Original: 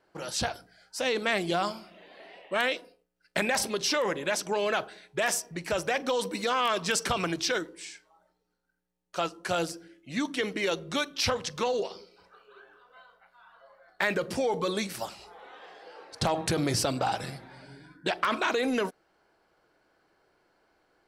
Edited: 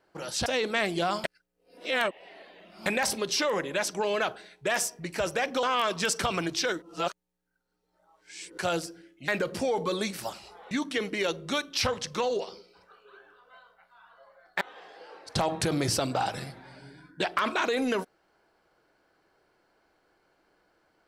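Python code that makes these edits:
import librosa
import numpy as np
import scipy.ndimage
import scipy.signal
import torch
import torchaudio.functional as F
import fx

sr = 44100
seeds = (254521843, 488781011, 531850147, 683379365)

y = fx.edit(x, sr, fx.cut(start_s=0.46, length_s=0.52),
    fx.reverse_span(start_s=1.76, length_s=1.62),
    fx.cut(start_s=6.15, length_s=0.34),
    fx.reverse_span(start_s=7.68, length_s=1.76),
    fx.move(start_s=14.04, length_s=1.43, to_s=10.14), tone=tone)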